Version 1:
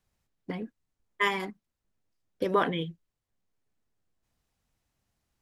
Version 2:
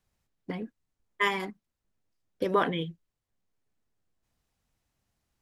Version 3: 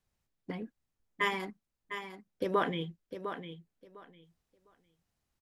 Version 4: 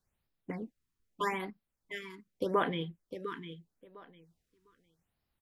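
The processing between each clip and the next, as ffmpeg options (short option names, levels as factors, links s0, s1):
-af anull
-af "aecho=1:1:704|1408|2112:0.335|0.0636|0.0121,volume=0.631"
-af "afftfilt=real='re*(1-between(b*sr/1024,600*pow(7800/600,0.5+0.5*sin(2*PI*0.81*pts/sr))/1.41,600*pow(7800/600,0.5+0.5*sin(2*PI*0.81*pts/sr))*1.41))':imag='im*(1-between(b*sr/1024,600*pow(7800/600,0.5+0.5*sin(2*PI*0.81*pts/sr))/1.41,600*pow(7800/600,0.5+0.5*sin(2*PI*0.81*pts/sr))*1.41))':win_size=1024:overlap=0.75"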